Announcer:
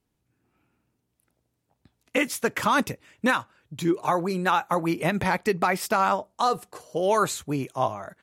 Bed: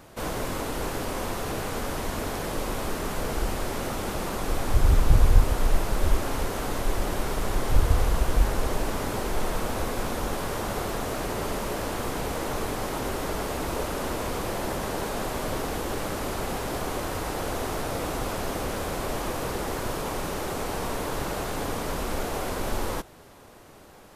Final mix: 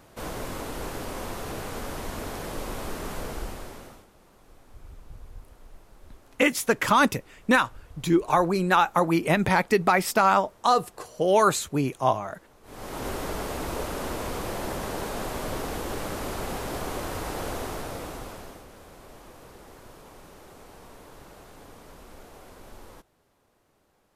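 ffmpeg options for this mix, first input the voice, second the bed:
ffmpeg -i stem1.wav -i stem2.wav -filter_complex "[0:a]adelay=4250,volume=2.5dB[link_01];[1:a]volume=21dB,afade=type=out:start_time=3.15:duration=0.92:silence=0.0707946,afade=type=in:start_time=12.63:duration=0.45:silence=0.0562341,afade=type=out:start_time=17.47:duration=1.18:silence=0.158489[link_02];[link_01][link_02]amix=inputs=2:normalize=0" out.wav

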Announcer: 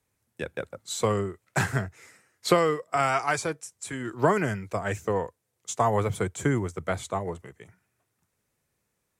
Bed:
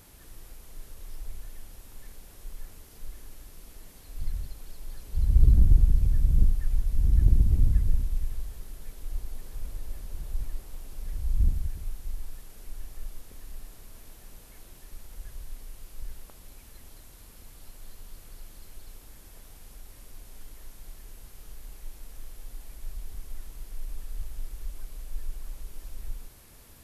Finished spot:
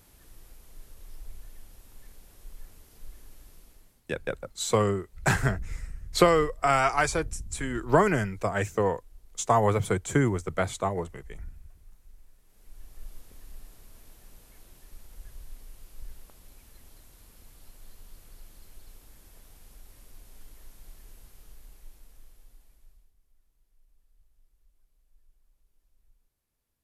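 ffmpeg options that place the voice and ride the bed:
ffmpeg -i stem1.wav -i stem2.wav -filter_complex "[0:a]adelay=3700,volume=1.5dB[link_01];[1:a]volume=10dB,afade=type=out:start_time=3.52:duration=0.5:silence=0.199526,afade=type=in:start_time=12.42:duration=0.71:silence=0.188365,afade=type=out:start_time=21.12:duration=2.01:silence=0.0562341[link_02];[link_01][link_02]amix=inputs=2:normalize=0" out.wav

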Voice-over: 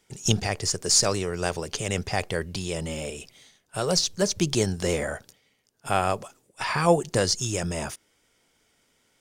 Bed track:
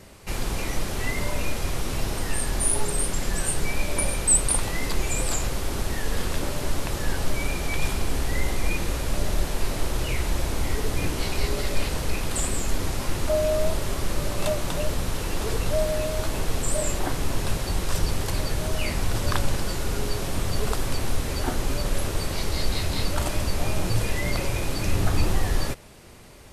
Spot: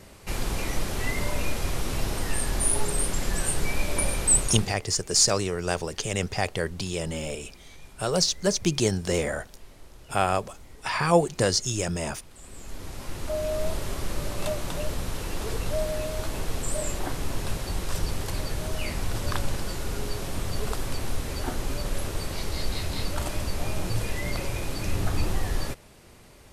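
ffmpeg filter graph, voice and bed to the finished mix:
ffmpeg -i stem1.wav -i stem2.wav -filter_complex "[0:a]adelay=4250,volume=0dB[link_01];[1:a]volume=18dB,afade=type=out:start_time=4.34:duration=0.43:silence=0.0794328,afade=type=in:start_time=12.38:duration=1.36:silence=0.112202[link_02];[link_01][link_02]amix=inputs=2:normalize=0" out.wav

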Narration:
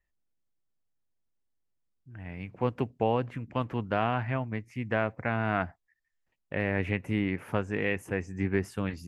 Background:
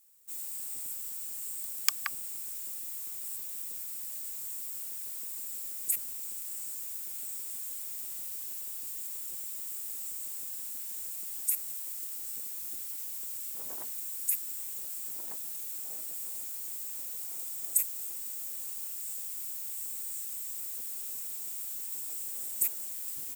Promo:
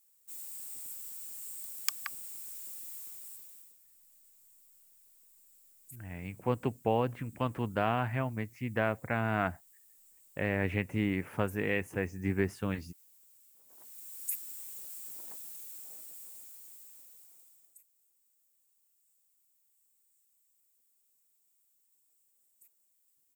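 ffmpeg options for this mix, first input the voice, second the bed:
ffmpeg -i stem1.wav -i stem2.wav -filter_complex "[0:a]adelay=3850,volume=-2dB[link_01];[1:a]volume=12dB,afade=type=out:start_time=2.96:duration=0.81:silence=0.125893,afade=type=in:start_time=13.67:duration=0.61:silence=0.141254,afade=type=out:start_time=15.3:duration=2.49:silence=0.0398107[link_02];[link_01][link_02]amix=inputs=2:normalize=0" out.wav

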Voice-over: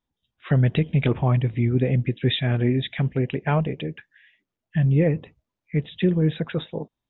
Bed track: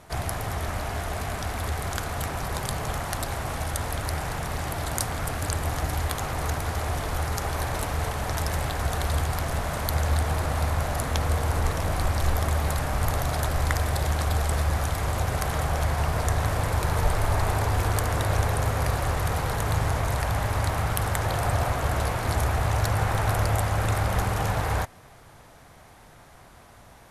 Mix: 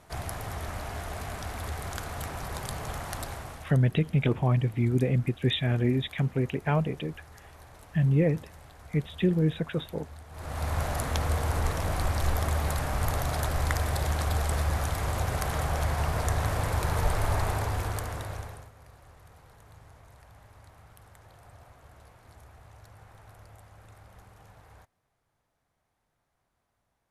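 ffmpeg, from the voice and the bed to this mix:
ffmpeg -i stem1.wav -i stem2.wav -filter_complex "[0:a]adelay=3200,volume=-4dB[link_01];[1:a]volume=13.5dB,afade=type=out:start_time=3.22:duration=0.55:silence=0.149624,afade=type=in:start_time=10.31:duration=0.48:silence=0.105925,afade=type=out:start_time=17.33:duration=1.37:silence=0.0562341[link_02];[link_01][link_02]amix=inputs=2:normalize=0" out.wav

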